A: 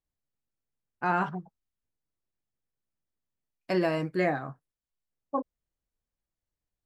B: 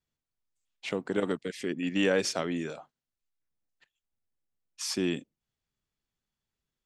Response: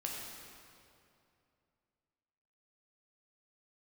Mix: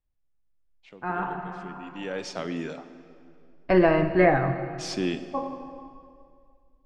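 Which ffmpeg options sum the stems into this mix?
-filter_complex "[0:a]asubboost=boost=11:cutoff=59,lowpass=2.4k,lowshelf=f=87:g=11.5,volume=-3dB,asplit=2[a][b];[b]volume=-4dB[c];[1:a]volume=-8dB,afade=t=in:st=2:d=0.67:silence=0.251189,asplit=3[d][e][f];[e]volume=-9dB[g];[f]apad=whole_len=302234[h];[a][h]sidechaincompress=threshold=-58dB:ratio=8:attack=16:release=484[i];[2:a]atrim=start_sample=2205[j];[c][g]amix=inputs=2:normalize=0[k];[k][j]afir=irnorm=-1:irlink=0[l];[i][d][l]amix=inputs=3:normalize=0,lowpass=5.3k,dynaudnorm=f=470:g=7:m=8dB"

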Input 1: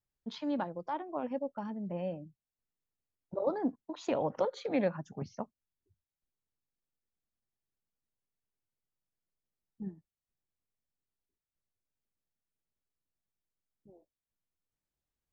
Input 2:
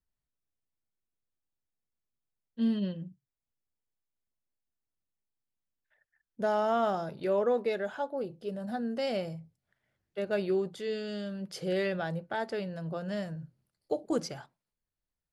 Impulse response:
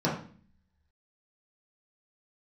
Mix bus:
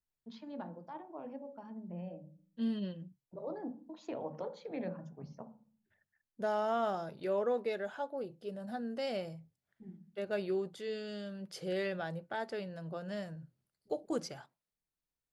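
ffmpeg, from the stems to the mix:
-filter_complex "[0:a]volume=-12dB,asplit=2[a][b];[b]volume=-18dB[c];[1:a]lowshelf=f=180:g=-4,volume=-4.5dB[d];[2:a]atrim=start_sample=2205[e];[c][e]afir=irnorm=-1:irlink=0[f];[a][d][f]amix=inputs=3:normalize=0"

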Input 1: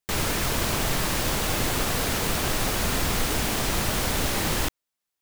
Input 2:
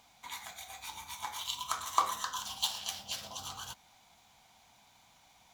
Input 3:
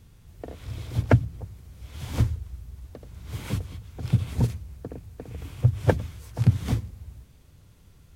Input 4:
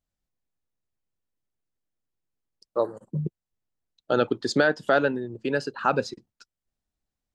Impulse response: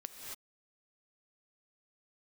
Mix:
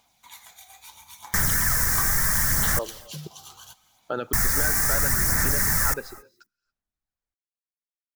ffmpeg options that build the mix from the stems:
-filter_complex "[0:a]firequalizer=gain_entry='entry(160,0);entry(350,-13);entry(1800,8);entry(2900,-25);entry(5500,3)':delay=0.05:min_phase=1,highshelf=f=9.5k:g=8.5,adelay=1250,volume=1.5dB,asplit=3[a][b][c];[a]atrim=end=2.79,asetpts=PTS-STARTPTS,afade=t=out:st=2.786:d=0.004:c=hsin[d];[b]atrim=start=2.79:end=4.33,asetpts=PTS-STARTPTS,volume=0[e];[c]atrim=start=4.33,asetpts=PTS-STARTPTS,afade=t=in:d=0.004:c=hsin[f];[d][e][f]concat=n=3:v=0:a=1,asplit=2[g][h];[h]volume=-19.5dB[i];[1:a]highshelf=f=7.1k:g=10,bandreject=f=7.6k:w=25,volume=-7dB,asplit=2[j][k];[k]volume=-11dB[l];[3:a]alimiter=limit=-12.5dB:level=0:latency=1,equalizer=f=1.4k:w=0.95:g=7.5,volume=-10dB,asplit=2[m][n];[n]volume=-14dB[o];[4:a]atrim=start_sample=2205[p];[i][l][o]amix=inputs=3:normalize=0[q];[q][p]afir=irnorm=-1:irlink=0[r];[g][j][m][r]amix=inputs=4:normalize=0,aphaser=in_gain=1:out_gain=1:delay=2.6:decay=0.32:speed=0.74:type=sinusoidal,acompressor=threshold=-19dB:ratio=2.5"

